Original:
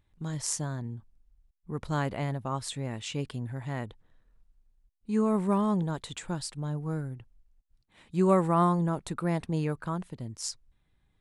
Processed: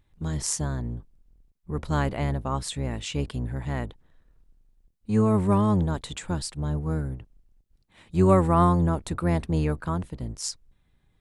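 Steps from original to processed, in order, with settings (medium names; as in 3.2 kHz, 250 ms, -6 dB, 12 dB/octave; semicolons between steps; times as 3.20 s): octave divider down 1 oct, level -2 dB; trim +3.5 dB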